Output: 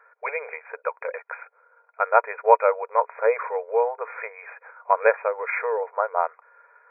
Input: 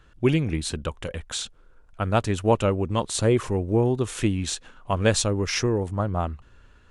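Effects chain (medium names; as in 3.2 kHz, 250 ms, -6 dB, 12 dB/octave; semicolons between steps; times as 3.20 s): brick-wall FIR band-pass 430–2500 Hz; small resonant body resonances 960/1400 Hz, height 9 dB; trim +4.5 dB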